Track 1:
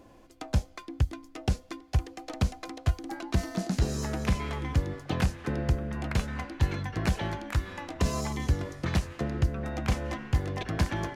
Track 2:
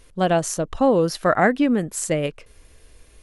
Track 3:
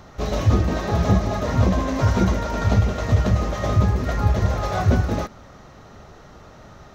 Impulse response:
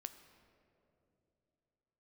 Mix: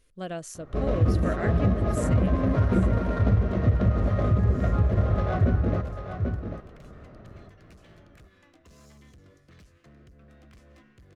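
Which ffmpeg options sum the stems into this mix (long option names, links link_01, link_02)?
-filter_complex "[0:a]alimiter=limit=-20.5dB:level=0:latency=1:release=130,asoftclip=type=hard:threshold=-32dB,adelay=650,volume=-17.5dB[link_01];[1:a]volume=-14dB,asplit=2[link_02][link_03];[link_03]volume=-16dB[link_04];[2:a]adynamicsmooth=sensitivity=0.5:basefreq=1300,adelay=550,volume=-1.5dB,asplit=2[link_05][link_06];[link_06]volume=-8.5dB[link_07];[link_04][link_07]amix=inputs=2:normalize=0,aecho=0:1:791:1[link_08];[link_01][link_02][link_05][link_08]amix=inputs=4:normalize=0,equalizer=frequency=870:width_type=o:width=0.37:gain=-10.5,alimiter=limit=-12.5dB:level=0:latency=1:release=170"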